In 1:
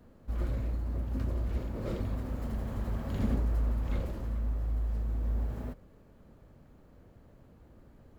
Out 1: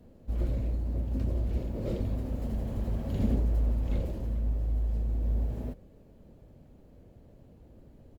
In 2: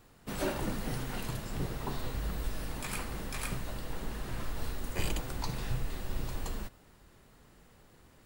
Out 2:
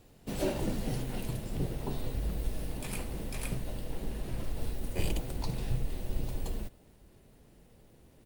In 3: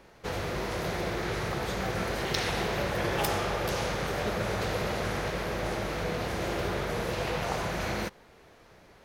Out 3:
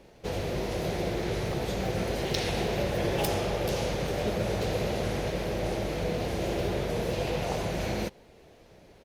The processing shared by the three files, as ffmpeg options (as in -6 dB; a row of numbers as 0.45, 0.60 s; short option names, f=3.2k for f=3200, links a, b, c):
-af "firequalizer=gain_entry='entry(590,0);entry(1200,-11);entry(2600,-3)':delay=0.05:min_phase=1,volume=2.5dB" -ar 48000 -c:a libopus -b:a 48k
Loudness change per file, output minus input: +2.5, +1.0, +0.5 LU